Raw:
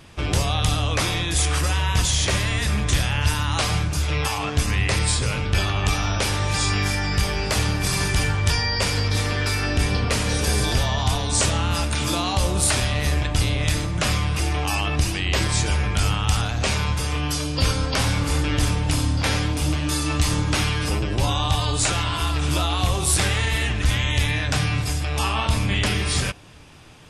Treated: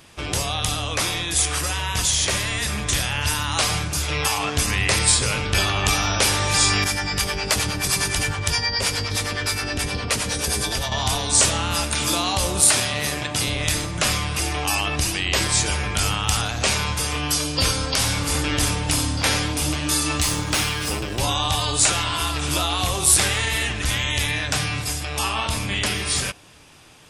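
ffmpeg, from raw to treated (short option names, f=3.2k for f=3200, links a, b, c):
-filter_complex "[0:a]asettb=1/sr,asplit=3[a][b][c];[a]atrim=end=6.844[d];[b]atrim=start=6.84:end=10.92,asetpts=PTS-STARTPTS,afade=t=in:d=0.004:c=qsin,afade=t=out:st=4.076:d=0.004:c=qsin,acrossover=split=480[e][f];[e]aeval=exprs='val(0)*(1-0.7/2+0.7/2*cos(2*PI*9.6*n/s))':c=same[g];[f]aeval=exprs='val(0)*(1-0.7/2-0.7/2*cos(2*PI*9.6*n/s))':c=same[h];[g][h]amix=inputs=2:normalize=0[i];[c]atrim=start=10.916[j];[d][i]acrossfade=d=0.004:c1=hsin:c2=qsin[k];[k][j]acrossfade=d=0.004:c1=qsin:c2=hsin,asettb=1/sr,asplit=3[l][m][n];[l]atrim=end=12.614[o];[m]atrim=start=12.61:end=13.48,asetpts=PTS-STARTPTS,afade=t=in:d=0.004:c=qsin,afade=t=out:st=0.866:d=0.004:c=qsin,highpass=f=100:w=0.5412,highpass=f=100:w=1.3066[p];[n]atrim=start=13.476[q];[o][p]acrossfade=d=0.004:c1=hsin:c2=qsin[r];[r][q]acrossfade=d=0.004:c1=qsin:c2=hsin,asettb=1/sr,asplit=3[s][t][u];[s]atrim=end=17.684[v];[t]atrim=start=17.68:end=18.35,asetpts=PTS-STARTPTS,afade=t=in:d=0.004:c=qsin,afade=t=out:st=0.666:d=0.004:c=qsin,acrossover=split=160|3000[w][x][y];[x]acompressor=threshold=-25dB:ratio=6:attack=3.2:release=140:knee=2.83:detection=peak[z];[w][z][y]amix=inputs=3:normalize=0[aa];[u]atrim=start=18.346[ab];[v][aa]acrossfade=d=0.004:c1=hsin:c2=qsin[ac];[ac][ab]acrossfade=d=0.004:c1=qsin:c2=hsin,asettb=1/sr,asplit=3[ad][ae][af];[ad]atrim=end=20.194[ag];[ae]atrim=start=20.19:end=21.19,asetpts=PTS-STARTPTS,afade=t=in:d=0.004:c=qsin,afade=t=out:st=0.996:d=0.004:c=qsin,aeval=exprs='sgn(val(0))*max(abs(val(0))-0.0158,0)':c=same[ah];[af]atrim=start=21.186[ai];[ag][ah]acrossfade=d=0.004:c1=hsin:c2=qsin[aj];[aj][ai]acrossfade=d=0.004:c1=qsin:c2=hsin,highshelf=f=6.1k:g=7.5,dynaudnorm=f=810:g=9:m=11.5dB,lowshelf=f=200:g=-7.5,volume=-1dB"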